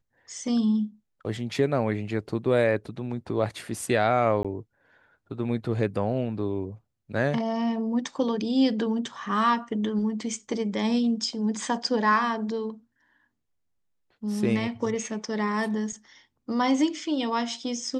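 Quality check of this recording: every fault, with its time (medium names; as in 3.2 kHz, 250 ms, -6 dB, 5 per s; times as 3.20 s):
4.43–4.45 s: dropout 16 ms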